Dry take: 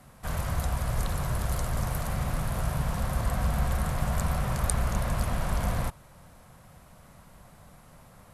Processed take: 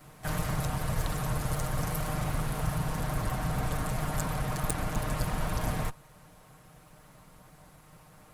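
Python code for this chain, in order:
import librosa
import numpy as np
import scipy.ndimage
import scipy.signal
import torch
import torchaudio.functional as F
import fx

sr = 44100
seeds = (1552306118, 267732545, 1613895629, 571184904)

y = fx.lower_of_two(x, sr, delay_ms=6.5)
y = fx.rider(y, sr, range_db=3, speed_s=0.5)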